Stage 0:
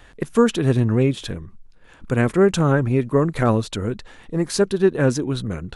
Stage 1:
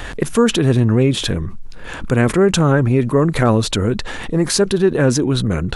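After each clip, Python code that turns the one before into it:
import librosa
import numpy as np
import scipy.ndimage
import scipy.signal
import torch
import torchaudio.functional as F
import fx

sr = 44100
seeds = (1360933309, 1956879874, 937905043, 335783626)

y = fx.env_flatten(x, sr, amount_pct=50)
y = y * librosa.db_to_amplitude(1.0)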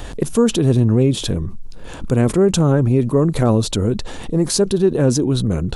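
y = fx.peak_eq(x, sr, hz=1800.0, db=-11.0, octaves=1.5)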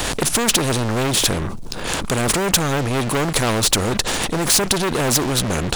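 y = fx.leveller(x, sr, passes=3)
y = fx.spectral_comp(y, sr, ratio=2.0)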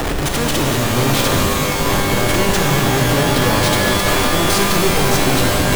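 y = scipy.ndimage.median_filter(x, 3, mode='constant')
y = fx.schmitt(y, sr, flips_db=-22.5)
y = fx.rev_shimmer(y, sr, seeds[0], rt60_s=3.8, semitones=12, shimmer_db=-2, drr_db=0.0)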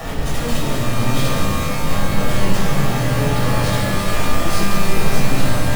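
y = fx.room_shoebox(x, sr, seeds[1], volume_m3=680.0, walls='furnished', distance_m=6.3)
y = y * librosa.db_to_amplitude(-14.5)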